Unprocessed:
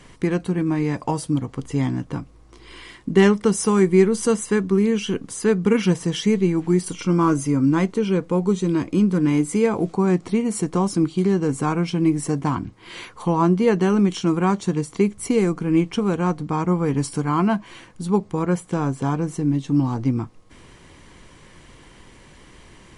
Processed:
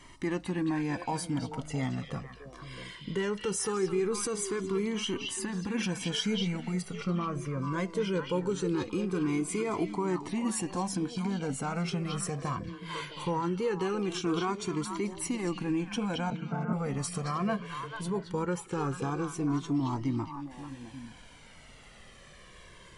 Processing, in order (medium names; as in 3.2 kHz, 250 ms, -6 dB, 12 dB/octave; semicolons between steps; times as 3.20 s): 16.30–16.73 s: vocoder on a held chord minor triad, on D3; bass shelf 230 Hz -6 dB; peak limiter -17.5 dBFS, peak gain reduction 11.5 dB; 6.82–7.62 s: tone controls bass 0 dB, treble -15 dB; repeats whose band climbs or falls 220 ms, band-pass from 3.4 kHz, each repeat -1.4 oct, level -2 dB; Shepard-style flanger falling 0.2 Hz